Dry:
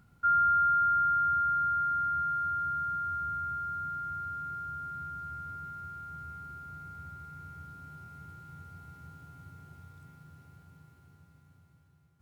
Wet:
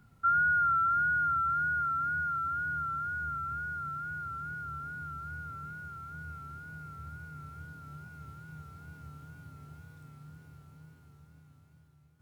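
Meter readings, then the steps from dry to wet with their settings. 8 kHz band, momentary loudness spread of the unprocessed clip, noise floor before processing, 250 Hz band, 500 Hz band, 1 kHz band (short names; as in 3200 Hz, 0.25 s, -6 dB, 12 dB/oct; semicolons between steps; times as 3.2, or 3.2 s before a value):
n/a, 23 LU, -63 dBFS, +3.0 dB, +2.0 dB, -2.0 dB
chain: flutter echo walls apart 4.5 m, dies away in 0.25 s; wow and flutter 61 cents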